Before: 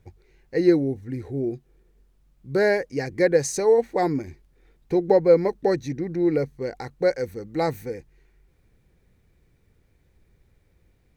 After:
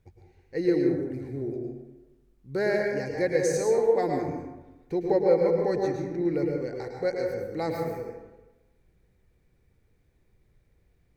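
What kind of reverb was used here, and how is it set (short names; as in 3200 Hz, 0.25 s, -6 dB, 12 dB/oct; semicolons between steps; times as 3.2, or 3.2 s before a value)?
plate-style reverb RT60 1.1 s, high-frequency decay 0.45×, pre-delay 95 ms, DRR 0.5 dB; gain -7 dB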